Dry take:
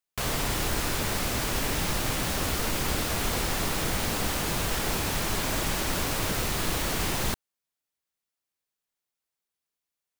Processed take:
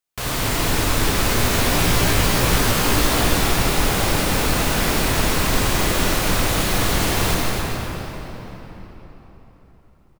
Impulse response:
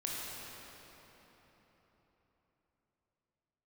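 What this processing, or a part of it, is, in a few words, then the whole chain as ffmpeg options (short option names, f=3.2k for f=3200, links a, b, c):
cave: -filter_complex "[0:a]asettb=1/sr,asplit=3[a][b][c];[a]atrim=end=1.164[d];[b]atrim=start=1.16:end=3.21,asetpts=PTS-STARTPTS,afade=t=in:d=0.004:c=qsin,afade=t=out:st=2.046:d=0.004:c=qsin,asplit=2[e][f];[f]adelay=17,volume=-3dB[g];[e][g]amix=inputs=2:normalize=0,atrim=end_sample=90405[h];[c]atrim=start=3.206[i];[d][h]acrossfade=d=0.004:c1=hsin:c2=qsin[j];[j][i]acrossfade=d=0.004:c1=qsin:c2=hsin,aecho=1:1:266:0.376[k];[1:a]atrim=start_sample=2205[l];[k][l]afir=irnorm=-1:irlink=0,volume=5dB"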